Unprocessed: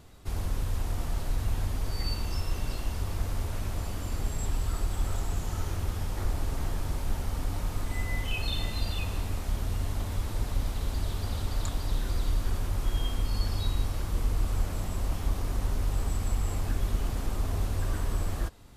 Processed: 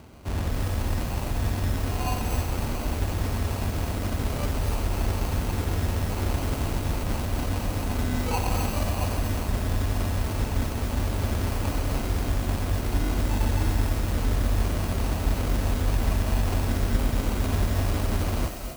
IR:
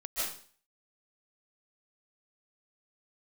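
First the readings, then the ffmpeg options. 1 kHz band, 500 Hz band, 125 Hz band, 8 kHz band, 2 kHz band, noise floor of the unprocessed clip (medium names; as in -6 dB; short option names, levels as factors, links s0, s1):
+8.0 dB, +9.0 dB, +6.0 dB, +5.0 dB, +6.5 dB, -36 dBFS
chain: -filter_complex "[0:a]highpass=55,equalizer=f=240:t=o:w=0.33:g=5.5,acrusher=samples=25:mix=1:aa=0.000001,asplit=2[s0][s1];[1:a]atrim=start_sample=2205,highshelf=f=6000:g=12,adelay=88[s2];[s1][s2]afir=irnorm=-1:irlink=0,volume=0.266[s3];[s0][s3]amix=inputs=2:normalize=0,volume=2.11"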